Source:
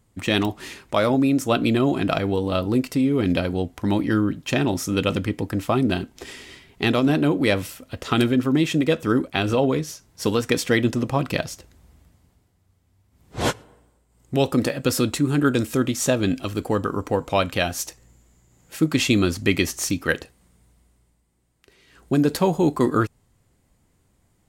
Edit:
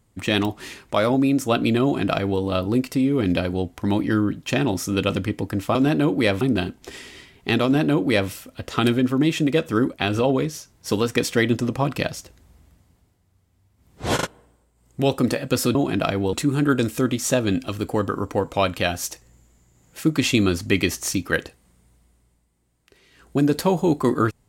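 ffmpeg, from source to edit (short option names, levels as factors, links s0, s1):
-filter_complex "[0:a]asplit=8[s0][s1][s2][s3][s4][s5][s6][s7];[s0]atrim=end=5.752[s8];[s1]atrim=start=6.978:end=7.642[s9];[s2]atrim=start=5.748:end=13.532[s10];[s3]atrim=start=13.488:end=13.532[s11];[s4]atrim=start=13.488:end=13.532[s12];[s5]atrim=start=13.608:end=15.092[s13];[s6]atrim=start=1.828:end=2.412[s14];[s7]atrim=start=15.088[s15];[s8][s9]acrossfade=d=0.004:c1=hsin:c2=hsin[s16];[s16][s10]acrossfade=d=0.004:c1=hsin:c2=hsin[s17];[s17][s11]acrossfade=d=0.004:c1=hsin:c2=hsin[s18];[s18][s12]acrossfade=d=0.004:c1=hsin:c2=hsin[s19];[s19][s13]acrossfade=d=0.004:c1=hsin:c2=hsin[s20];[s20][s14]acrossfade=d=0.004:c1=hsin:c2=hsin[s21];[s21][s15]acrossfade=d=0.004:c1=hsin:c2=hsin"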